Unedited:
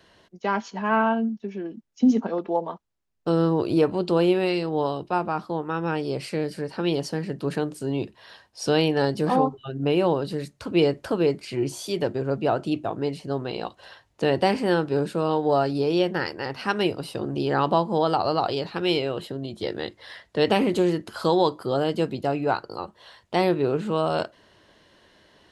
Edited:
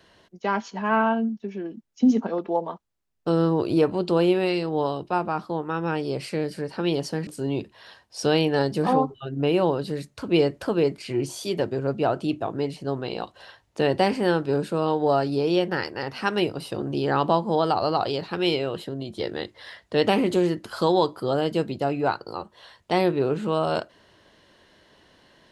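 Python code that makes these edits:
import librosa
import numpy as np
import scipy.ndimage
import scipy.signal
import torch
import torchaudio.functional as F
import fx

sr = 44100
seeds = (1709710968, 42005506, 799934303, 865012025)

y = fx.edit(x, sr, fx.cut(start_s=7.27, length_s=0.43), tone=tone)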